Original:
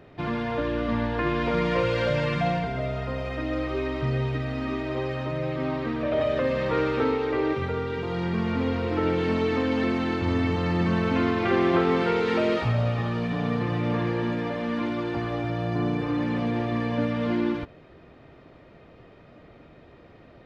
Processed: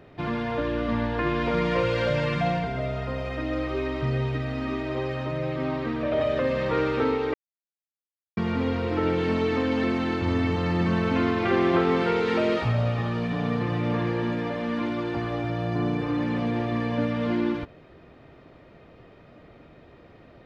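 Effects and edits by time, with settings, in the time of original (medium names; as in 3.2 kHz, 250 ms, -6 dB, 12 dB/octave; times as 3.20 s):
7.34–8.37 s: mute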